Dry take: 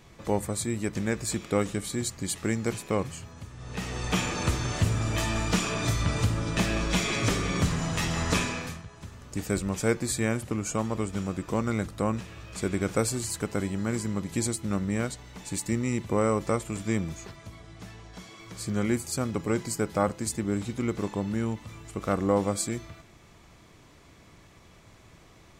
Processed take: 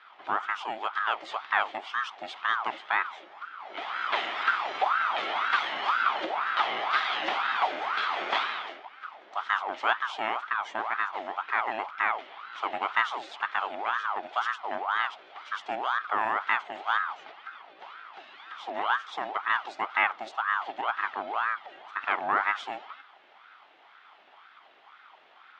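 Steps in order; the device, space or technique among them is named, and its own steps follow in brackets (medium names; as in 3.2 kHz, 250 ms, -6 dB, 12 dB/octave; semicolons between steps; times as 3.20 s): voice changer toy (ring modulator with a swept carrier 950 Hz, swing 55%, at 2 Hz; cabinet simulation 510–3700 Hz, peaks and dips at 510 Hz -8 dB, 780 Hz +4 dB, 1.3 kHz +5 dB, 2.1 kHz +5 dB, 3.3 kHz +6 dB)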